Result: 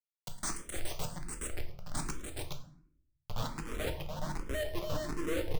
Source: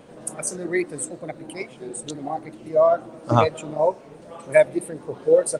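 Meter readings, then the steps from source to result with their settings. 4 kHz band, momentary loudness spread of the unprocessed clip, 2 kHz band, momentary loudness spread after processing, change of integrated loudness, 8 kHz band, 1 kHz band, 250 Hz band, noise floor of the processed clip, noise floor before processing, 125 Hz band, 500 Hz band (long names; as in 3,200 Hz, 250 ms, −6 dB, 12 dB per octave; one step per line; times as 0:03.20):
−3.0 dB, 16 LU, −12.0 dB, 9 LU, −16.5 dB, −10.5 dB, −17.5 dB, −12.5 dB, below −85 dBFS, −45 dBFS, −10.0 dB, −20.5 dB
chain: high-pass filter 99 Hz 24 dB per octave
high-shelf EQ 6,300 Hz +6.5 dB
in parallel at −1.5 dB: downward compressor 6 to 1, threshold −26 dBFS, peak gain reduction 15 dB
on the sum: asymmetric clip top −20.5 dBFS
band-pass filter sweep 5,100 Hz → 220 Hz, 0:03.29–0:05.19
steady tone 8,900 Hz −59 dBFS
comparator with hysteresis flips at −31 dBFS
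on a send: multi-tap delay 109/292/420 ms −17/−7/−3.5 dB
on the sum: rectangular room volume 87 cubic metres, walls mixed, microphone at 0.48 metres
frequency shifter mixed with the dry sound +1.3 Hz
level −1.5 dB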